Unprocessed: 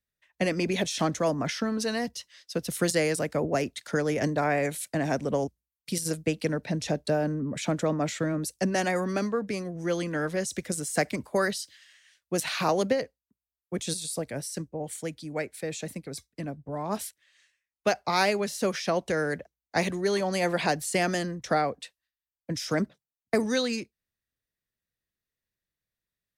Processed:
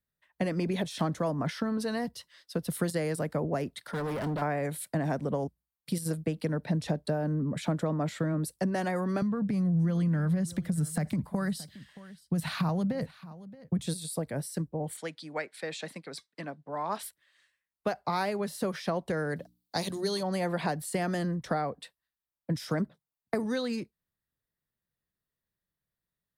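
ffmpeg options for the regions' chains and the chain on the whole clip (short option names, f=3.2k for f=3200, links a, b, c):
-filter_complex "[0:a]asettb=1/sr,asplit=3[a][b][c];[a]atrim=end=3.794[d];[b]atrim=start=3.79:end=4.42,asetpts=PTS-STARTPTS,afade=t=in:d=0.004:c=qsin,afade=t=out:st=0.626:d=0.004:c=qsin,equalizer=f=7k:w=5.1:g=-7.5,asoftclip=type=hard:threshold=-31.5dB[e];[c]atrim=start=4.416[f];[d][e]acrossfade=d=0.004:c1=hsin:c2=qsin[g];[g][f]acrossfade=d=0.004:c1=qsin:c2=hsin,asettb=1/sr,asplit=3[h][i][j];[h]atrim=end=9.224[k];[i]atrim=start=9.22:end=13.87,asetpts=PTS-STARTPTS,afade=t=in:d=0.004:c=qsin,afade=t=out:st=4.646:d=0.004:c=qsin,lowshelf=f=260:t=q:w=1.5:g=9.5,acompressor=threshold=-25dB:ratio=6:attack=3.2:release=140:knee=1:detection=peak,aecho=1:1:624:0.0891,atrim=end_sample=205065[l];[j]atrim=start=13.866[m];[k][l]acrossfade=d=0.004:c1=hsin:c2=qsin[n];[n][m]acrossfade=d=0.004:c1=qsin:c2=hsin,asettb=1/sr,asplit=3[o][p][q];[o]atrim=end=14.974[r];[p]atrim=start=14.97:end=17.03,asetpts=PTS-STARTPTS,afade=t=in:d=0.004:c=qsin,afade=t=out:st=2.056:d=0.004:c=qsin,highpass=210,lowpass=5.3k,tiltshelf=f=750:g=-8[s];[q]atrim=start=17.026[t];[r][s]acrossfade=d=0.004:c1=hsin:c2=qsin[u];[u][t]acrossfade=d=0.004:c1=qsin:c2=hsin,asettb=1/sr,asplit=3[v][w][x];[v]atrim=end=19.364[y];[w]atrim=start=19.36:end=20.23,asetpts=PTS-STARTPTS,afade=t=in:d=0.004:c=qsin,afade=t=out:st=0.866:d=0.004:c=qsin,highshelf=f=2.9k:t=q:w=1.5:g=11,bandreject=f=60:t=h:w=6,bandreject=f=120:t=h:w=6,bandreject=f=180:t=h:w=6,bandreject=f=240:t=h:w=6,bandreject=f=300:t=h:w=6[z];[x]atrim=start=20.226[aa];[y][z]acrossfade=d=0.004:c1=hsin:c2=qsin[ab];[ab][aa]acrossfade=d=0.004:c1=qsin:c2=hsin,acompressor=threshold=-30dB:ratio=2.5,equalizer=f=160:t=o:w=0.67:g=6,equalizer=f=1k:t=o:w=0.67:g=3,equalizer=f=2.5k:t=o:w=0.67:g=-6,equalizer=f=6.3k:t=o:w=0.67:g=-11"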